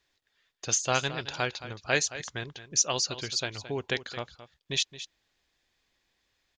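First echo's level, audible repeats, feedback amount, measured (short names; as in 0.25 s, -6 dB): -13.5 dB, 1, no steady repeat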